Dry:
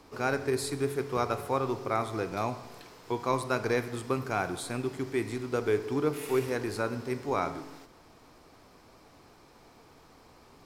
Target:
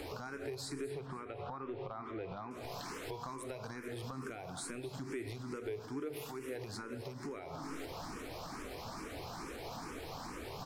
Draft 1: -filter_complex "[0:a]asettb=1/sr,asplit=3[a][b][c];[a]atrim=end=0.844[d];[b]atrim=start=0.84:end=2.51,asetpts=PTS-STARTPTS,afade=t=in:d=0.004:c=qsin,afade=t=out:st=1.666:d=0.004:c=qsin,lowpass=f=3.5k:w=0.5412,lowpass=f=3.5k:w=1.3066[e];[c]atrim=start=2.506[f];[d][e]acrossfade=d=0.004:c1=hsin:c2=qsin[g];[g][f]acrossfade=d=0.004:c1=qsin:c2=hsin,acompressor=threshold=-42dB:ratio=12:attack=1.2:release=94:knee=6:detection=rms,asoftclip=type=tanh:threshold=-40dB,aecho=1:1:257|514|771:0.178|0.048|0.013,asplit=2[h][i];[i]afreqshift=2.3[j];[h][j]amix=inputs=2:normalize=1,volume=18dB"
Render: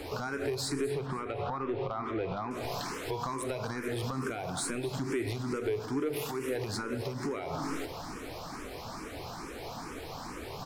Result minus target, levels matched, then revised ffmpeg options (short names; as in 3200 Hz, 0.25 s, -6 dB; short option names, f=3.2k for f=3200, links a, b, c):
compressor: peak gain reduction -10 dB
-filter_complex "[0:a]asettb=1/sr,asplit=3[a][b][c];[a]atrim=end=0.844[d];[b]atrim=start=0.84:end=2.51,asetpts=PTS-STARTPTS,afade=t=in:d=0.004:c=qsin,afade=t=out:st=1.666:d=0.004:c=qsin,lowpass=f=3.5k:w=0.5412,lowpass=f=3.5k:w=1.3066[e];[c]atrim=start=2.506[f];[d][e]acrossfade=d=0.004:c1=hsin:c2=qsin[g];[g][f]acrossfade=d=0.004:c1=qsin:c2=hsin,acompressor=threshold=-53dB:ratio=12:attack=1.2:release=94:knee=6:detection=rms,asoftclip=type=tanh:threshold=-40dB,aecho=1:1:257|514|771:0.178|0.048|0.013,asplit=2[h][i];[i]afreqshift=2.3[j];[h][j]amix=inputs=2:normalize=1,volume=18dB"